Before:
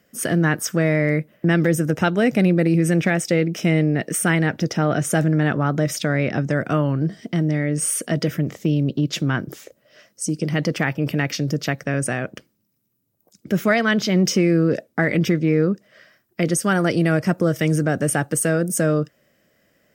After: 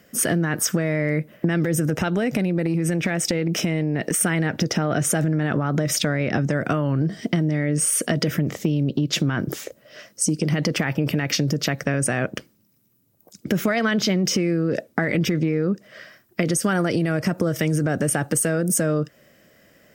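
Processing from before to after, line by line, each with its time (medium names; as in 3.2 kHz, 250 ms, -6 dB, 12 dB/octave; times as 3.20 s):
1.98–4.21 s: compression, threshold -24 dBFS
whole clip: peak limiter -14.5 dBFS; compression, threshold -25 dBFS; trim +7.5 dB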